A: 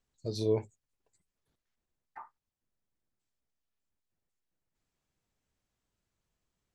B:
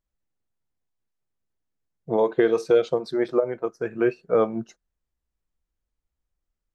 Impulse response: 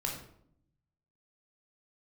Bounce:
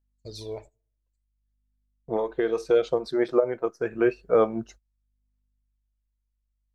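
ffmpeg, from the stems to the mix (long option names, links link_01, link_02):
-filter_complex "[0:a]aeval=exprs='val(0)+0.00141*(sin(2*PI*50*n/s)+sin(2*PI*2*50*n/s)/2+sin(2*PI*3*50*n/s)/3+sin(2*PI*4*50*n/s)/4+sin(2*PI*5*50*n/s)/5)':channel_layout=same,aphaser=in_gain=1:out_gain=1:delay=2.1:decay=0.6:speed=0.56:type=sinusoidal,volume=-1.5dB,asplit=3[link_01][link_02][link_03];[link_01]atrim=end=3.08,asetpts=PTS-STARTPTS,afade=type=out:start_time=3.076:duration=0.004:curve=hsin[link_04];[link_02]atrim=start=3.08:end=3.92,asetpts=PTS-STARTPTS,volume=0[link_05];[link_03]atrim=start=3.92,asetpts=PTS-STARTPTS,afade=type=in:duration=0.004:curve=hsin[link_06];[link_04][link_05][link_06]concat=n=3:v=0:a=1,asplit=3[link_07][link_08][link_09];[link_08]volume=-17dB[link_10];[1:a]lowshelf=frequency=350:gain=10,volume=0.5dB[link_11];[link_09]apad=whole_len=297638[link_12];[link_11][link_12]sidechaincompress=threshold=-49dB:ratio=8:attack=41:release=1300[link_13];[2:a]atrim=start_sample=2205[link_14];[link_10][link_14]afir=irnorm=-1:irlink=0[link_15];[link_07][link_13][link_15]amix=inputs=3:normalize=0,agate=range=-19dB:threshold=-40dB:ratio=16:detection=peak,equalizer=frequency=150:width_type=o:width=2.3:gain=-12"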